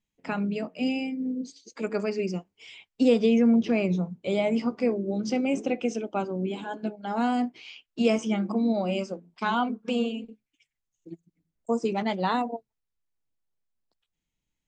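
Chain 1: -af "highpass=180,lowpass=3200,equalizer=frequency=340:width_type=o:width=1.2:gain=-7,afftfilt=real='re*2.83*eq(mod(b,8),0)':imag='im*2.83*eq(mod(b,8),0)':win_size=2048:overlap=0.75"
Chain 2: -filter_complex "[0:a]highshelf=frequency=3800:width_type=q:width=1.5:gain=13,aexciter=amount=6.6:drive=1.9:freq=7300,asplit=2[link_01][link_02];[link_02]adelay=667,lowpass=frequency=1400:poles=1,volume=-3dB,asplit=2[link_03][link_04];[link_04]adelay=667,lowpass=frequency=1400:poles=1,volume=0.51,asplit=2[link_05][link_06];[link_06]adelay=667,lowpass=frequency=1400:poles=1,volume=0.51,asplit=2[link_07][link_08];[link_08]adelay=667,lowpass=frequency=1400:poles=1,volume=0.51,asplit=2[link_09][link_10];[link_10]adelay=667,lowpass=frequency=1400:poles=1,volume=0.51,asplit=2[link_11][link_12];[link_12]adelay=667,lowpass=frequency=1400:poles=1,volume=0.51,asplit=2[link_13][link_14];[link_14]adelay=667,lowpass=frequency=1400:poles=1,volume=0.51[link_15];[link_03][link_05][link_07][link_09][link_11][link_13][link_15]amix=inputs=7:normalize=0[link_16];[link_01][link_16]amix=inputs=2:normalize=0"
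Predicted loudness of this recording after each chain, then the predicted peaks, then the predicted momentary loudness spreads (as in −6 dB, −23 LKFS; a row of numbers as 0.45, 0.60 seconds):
−36.5, −25.0 LKFS; −16.5, −8.0 dBFS; 19, 15 LU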